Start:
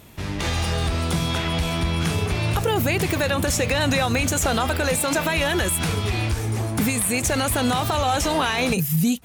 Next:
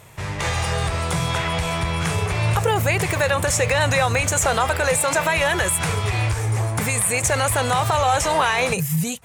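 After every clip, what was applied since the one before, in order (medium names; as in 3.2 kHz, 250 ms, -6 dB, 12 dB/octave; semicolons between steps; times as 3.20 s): graphic EQ 125/250/500/1000/2000/8000 Hz +12/-9/+8/+8/+8/+10 dB; trim -5.5 dB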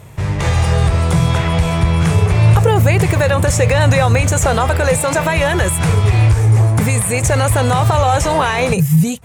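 bass shelf 480 Hz +11 dB; trim +1 dB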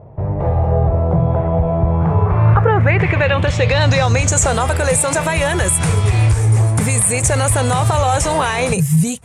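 low-pass sweep 680 Hz -> 9.6 kHz, 1.83–4.61 s; trim -2 dB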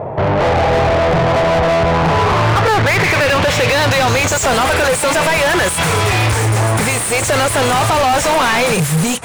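overdrive pedal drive 37 dB, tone 3.5 kHz, clips at -1 dBFS; trim -5.5 dB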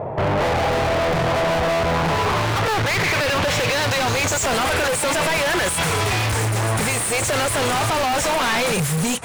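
wavefolder -13 dBFS; trim -4 dB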